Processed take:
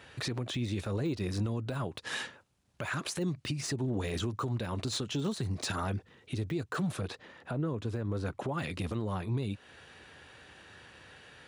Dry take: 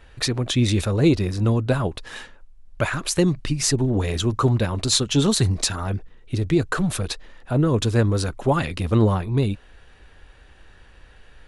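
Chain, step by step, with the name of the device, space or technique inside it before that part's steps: broadcast voice chain (HPF 96 Hz 24 dB/oct; de-esser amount 85%; compressor 4:1, threshold -30 dBFS, peak gain reduction 15.5 dB; bell 5300 Hz +3 dB 2.9 oct; limiter -24 dBFS, peak gain reduction 9 dB); 7.01–8.58 high shelf 3300 Hz -10 dB

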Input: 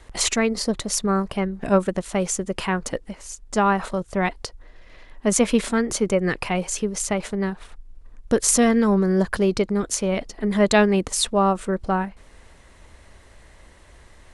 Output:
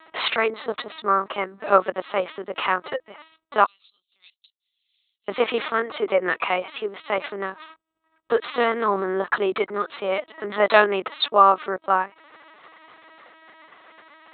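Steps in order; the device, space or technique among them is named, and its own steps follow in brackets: 3.64–5.29 inverse Chebyshev high-pass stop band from 1800 Hz, stop band 50 dB; talking toy (LPC vocoder at 8 kHz pitch kept; HPF 500 Hz 12 dB/oct; bell 1200 Hz +7.5 dB 0.43 oct); gain +4 dB

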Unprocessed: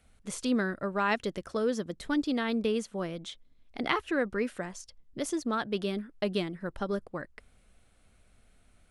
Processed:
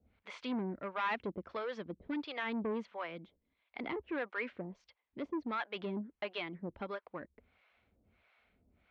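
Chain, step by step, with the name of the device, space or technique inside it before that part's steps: guitar amplifier with harmonic tremolo (harmonic tremolo 1.5 Hz, depth 100%, crossover 560 Hz; soft clip -31.5 dBFS, distortion -10 dB; speaker cabinet 76–3600 Hz, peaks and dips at 140 Hz -9 dB, 950 Hz +5 dB, 2200 Hz +7 dB)

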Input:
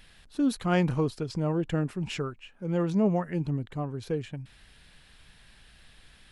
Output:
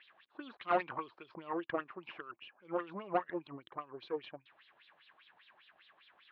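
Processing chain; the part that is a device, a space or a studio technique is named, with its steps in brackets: wah-wah guitar rig (wah 5 Hz 670–4000 Hz, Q 4.5; tube stage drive 34 dB, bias 0.75; speaker cabinet 98–3500 Hz, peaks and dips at 340 Hz +10 dB, 560 Hz +3 dB, 1100 Hz +8 dB); gain +8.5 dB

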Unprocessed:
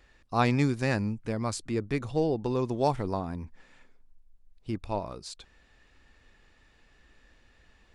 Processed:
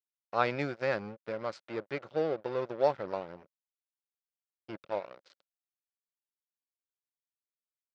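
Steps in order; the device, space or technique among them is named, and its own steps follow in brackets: blown loudspeaker (crossover distortion -37.5 dBFS; speaker cabinet 190–5000 Hz, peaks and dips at 250 Hz -8 dB, 550 Hz +10 dB, 1400 Hz +8 dB, 2100 Hz +3 dB); gain -4.5 dB

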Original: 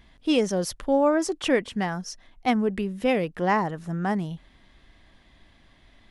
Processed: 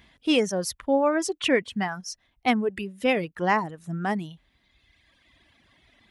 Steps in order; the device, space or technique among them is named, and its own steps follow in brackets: reverb removal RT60 1.7 s; HPF 68 Hz 12 dB/oct; presence and air boost (bell 2500 Hz +4.5 dB 0.99 oct; high shelf 9800 Hz +5 dB)

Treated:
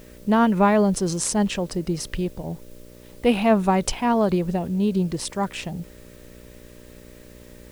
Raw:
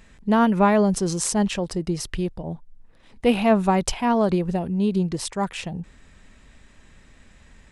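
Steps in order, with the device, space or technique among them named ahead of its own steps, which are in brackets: video cassette with head-switching buzz (buzz 60 Hz, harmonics 10, -47 dBFS -1 dB/oct; white noise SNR 32 dB)

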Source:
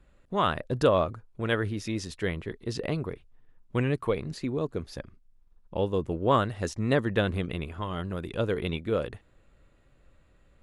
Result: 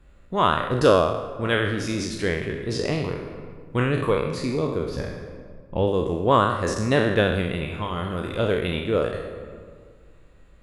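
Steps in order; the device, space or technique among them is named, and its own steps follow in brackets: spectral trails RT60 0.82 s; 4.89–5.88 tone controls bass +4 dB, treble -5 dB; compressed reverb return (on a send at -4 dB: reverb RT60 1.6 s, pre-delay 31 ms + compressor, threshold -30 dBFS, peak gain reduction 14 dB); on the sum: gain +3 dB

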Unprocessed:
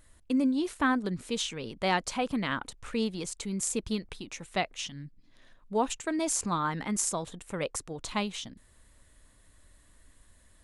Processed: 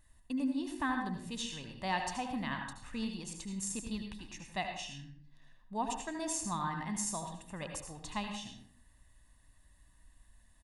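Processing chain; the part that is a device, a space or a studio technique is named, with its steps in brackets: microphone above a desk (comb 1.1 ms, depth 60%; reverb RT60 0.55 s, pre-delay 70 ms, DRR 4 dB); gain -9 dB

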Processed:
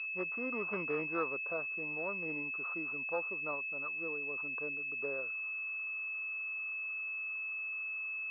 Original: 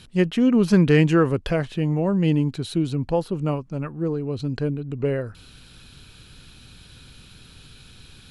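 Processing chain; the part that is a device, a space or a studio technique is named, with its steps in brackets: 0.91–2.29 air absorption 330 m; toy sound module (decimation joined by straight lines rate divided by 4×; pulse-width modulation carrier 2600 Hz; speaker cabinet 720–3800 Hz, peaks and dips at 780 Hz -5 dB, 1200 Hz +8 dB, 1800 Hz -9 dB, 3000 Hz -6 dB); gain -7 dB

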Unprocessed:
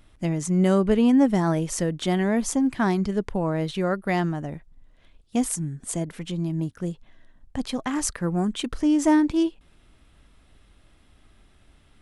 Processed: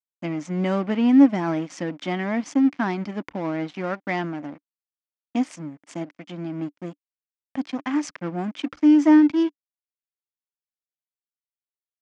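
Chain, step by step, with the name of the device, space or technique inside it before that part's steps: blown loudspeaker (crossover distortion -36.5 dBFS; speaker cabinet 210–5500 Hz, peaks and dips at 290 Hz +10 dB, 420 Hz -10 dB, 2200 Hz +5 dB, 4000 Hz -6 dB)

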